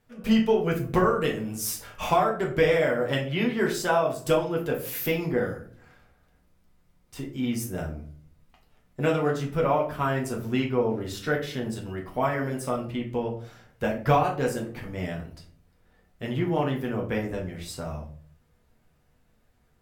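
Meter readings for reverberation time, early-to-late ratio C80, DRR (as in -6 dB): 0.45 s, 13.5 dB, -2.0 dB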